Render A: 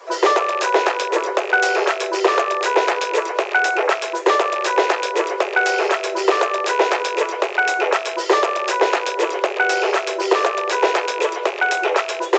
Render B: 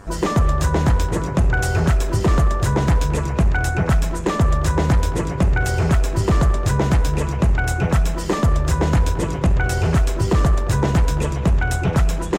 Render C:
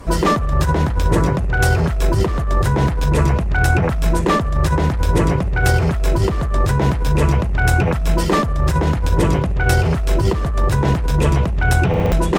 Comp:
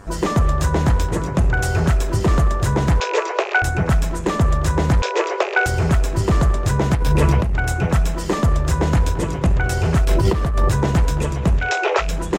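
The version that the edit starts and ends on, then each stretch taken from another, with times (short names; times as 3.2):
B
3–3.62 from A
5.02–5.66 from A
6.95–7.55 from C
10.05–10.7 from C
11.64–12.06 from A, crossfade 0.16 s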